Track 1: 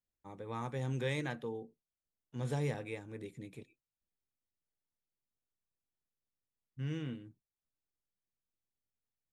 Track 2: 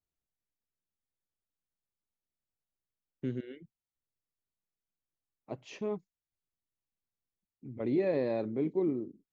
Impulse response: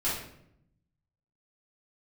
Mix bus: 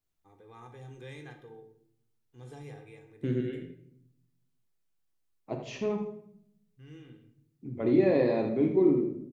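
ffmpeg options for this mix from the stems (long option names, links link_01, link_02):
-filter_complex "[0:a]aecho=1:1:2.5:0.5,volume=-13.5dB,asplit=2[link_01][link_02];[link_02]volume=-10.5dB[link_03];[1:a]volume=2dB,asplit=3[link_04][link_05][link_06];[link_05]volume=-9.5dB[link_07];[link_06]volume=-7dB[link_08];[2:a]atrim=start_sample=2205[link_09];[link_03][link_07]amix=inputs=2:normalize=0[link_10];[link_10][link_09]afir=irnorm=-1:irlink=0[link_11];[link_08]aecho=0:1:82|164|246|328|410:1|0.34|0.116|0.0393|0.0134[link_12];[link_01][link_04][link_11][link_12]amix=inputs=4:normalize=0"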